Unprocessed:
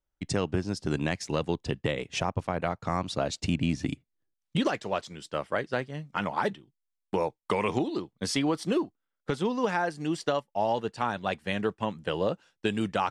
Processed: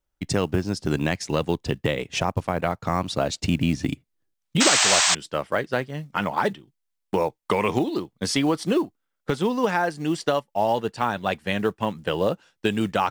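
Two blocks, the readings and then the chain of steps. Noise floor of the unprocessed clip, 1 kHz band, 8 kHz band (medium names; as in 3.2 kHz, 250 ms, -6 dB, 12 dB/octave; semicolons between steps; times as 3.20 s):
-84 dBFS, +5.5 dB, +16.5 dB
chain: painted sound noise, 4.60–5.15 s, 600–8500 Hz -24 dBFS; short-mantissa float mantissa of 4-bit; trim +5 dB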